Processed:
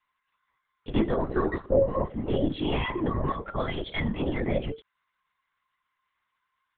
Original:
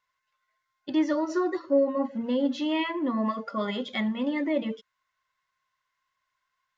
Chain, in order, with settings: LPC vocoder at 8 kHz whisper; bass shelf 170 Hz -3 dB; trim +1 dB

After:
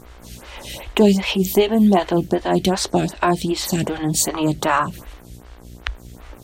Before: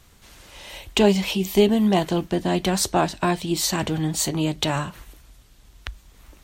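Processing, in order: 4.29–4.87 s: peaking EQ 1.2 kHz +9 dB 0.77 oct; in parallel at +1.5 dB: compression, threshold -29 dBFS, peak gain reduction 16.5 dB; on the sum: mains buzz 60 Hz, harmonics 38, -40 dBFS -7 dB/octave; lamp-driven phase shifter 2.6 Hz; trim +3.5 dB

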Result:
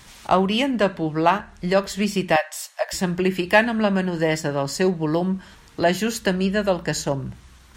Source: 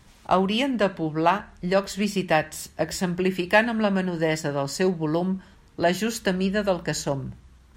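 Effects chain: 2.36–2.93 s: steep high-pass 550 Hz 72 dB/octave; tape noise reduction on one side only encoder only; trim +2.5 dB

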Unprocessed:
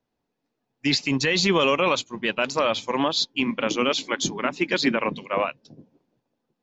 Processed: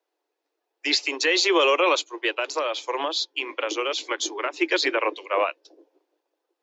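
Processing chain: steep high-pass 310 Hz 96 dB/octave; 2.28–4.54 s: compression, threshold -24 dBFS, peak gain reduction 6 dB; trim +1.5 dB

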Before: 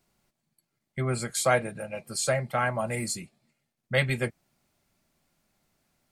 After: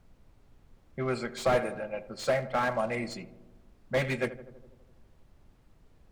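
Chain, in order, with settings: in parallel at -11.5 dB: companded quantiser 4-bit; on the sum: high-pass 200 Hz 12 dB/octave; level-controlled noise filter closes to 670 Hz, open at -21 dBFS; treble shelf 9.3 kHz -11.5 dB; on a send: filtered feedback delay 82 ms, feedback 70%, low-pass 1.3 kHz, level -14 dB; on the sum: added noise brown -55 dBFS; slew-rate limiter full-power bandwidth 82 Hz; trim -1.5 dB

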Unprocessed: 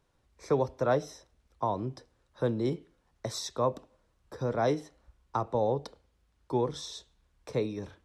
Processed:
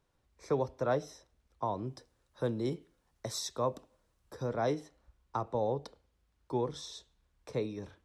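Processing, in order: 1.85–4.47 s: treble shelf 6.3 kHz +8 dB; trim -4 dB

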